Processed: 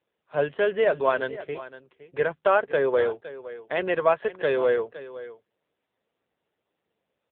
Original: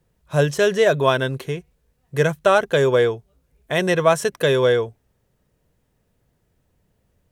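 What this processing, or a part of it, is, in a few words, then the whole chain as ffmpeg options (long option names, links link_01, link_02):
satellite phone: -af "highpass=350,lowpass=3100,aecho=1:1:513:0.168,volume=-3.5dB" -ar 8000 -c:a libopencore_amrnb -b:a 6700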